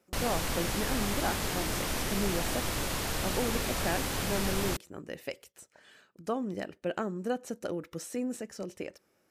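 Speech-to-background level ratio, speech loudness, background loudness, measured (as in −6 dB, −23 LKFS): −4.0 dB, −36.5 LKFS, −32.5 LKFS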